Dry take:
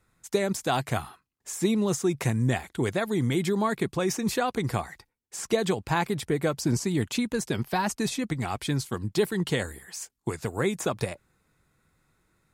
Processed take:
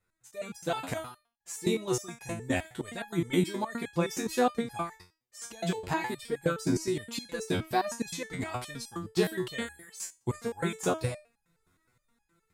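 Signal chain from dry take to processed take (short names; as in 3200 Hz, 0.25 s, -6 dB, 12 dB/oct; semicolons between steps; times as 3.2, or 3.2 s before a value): AGC gain up to 9.5 dB; stepped resonator 9.6 Hz 90–830 Hz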